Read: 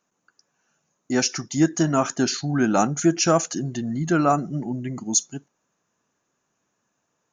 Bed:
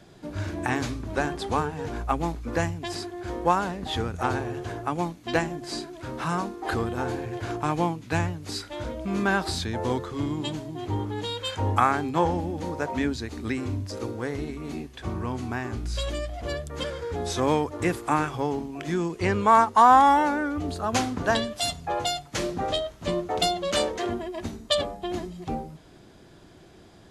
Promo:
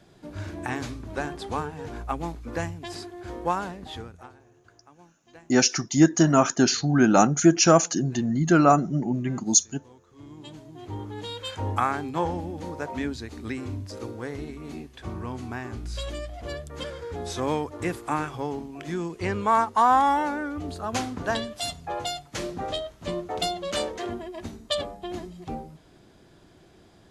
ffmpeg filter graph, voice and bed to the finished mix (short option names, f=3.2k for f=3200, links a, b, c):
-filter_complex "[0:a]adelay=4400,volume=2dB[a];[1:a]volume=18.5dB,afade=t=out:st=3.63:d=0.69:silence=0.0794328,afade=t=in:st=10.06:d=1.32:silence=0.0749894[b];[a][b]amix=inputs=2:normalize=0"